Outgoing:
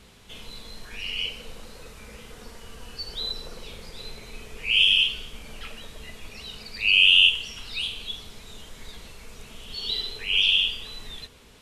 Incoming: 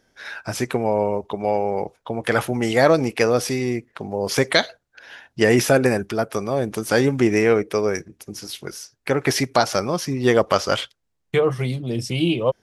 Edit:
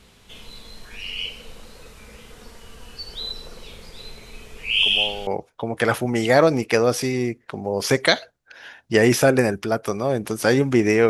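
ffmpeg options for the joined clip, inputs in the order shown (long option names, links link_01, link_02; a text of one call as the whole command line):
ffmpeg -i cue0.wav -i cue1.wav -filter_complex "[1:a]asplit=2[link_01][link_02];[0:a]apad=whole_dur=11.09,atrim=end=11.09,atrim=end=5.272[link_03];[link_02]atrim=start=1.738:end=7.56[link_04];[link_01]atrim=start=1.22:end=1.74,asetpts=PTS-STARTPTS,volume=-10.5dB,afade=type=in:duration=0.004:curve=hsin,afade=type=out:start_time=0.516:duration=0.004:curve=hsin,adelay=4750[link_05];[link_03][link_04]acrossfade=duration=0.004:curve1=hsin:curve2=hsin[link_06];[link_06][link_05]amix=inputs=2:normalize=0" out.wav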